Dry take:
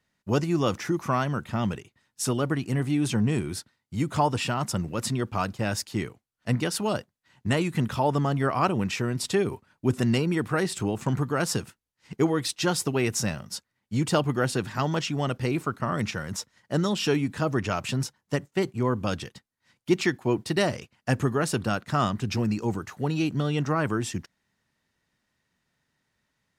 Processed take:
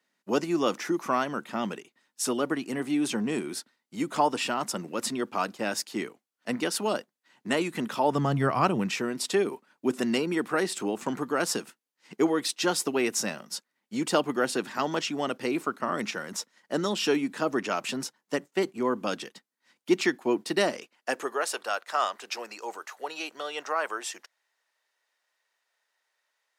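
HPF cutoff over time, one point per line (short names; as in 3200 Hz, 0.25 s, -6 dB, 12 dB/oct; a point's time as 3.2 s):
HPF 24 dB/oct
8.02 s 230 Hz
8.39 s 93 Hz
9.13 s 230 Hz
20.66 s 230 Hz
21.5 s 520 Hz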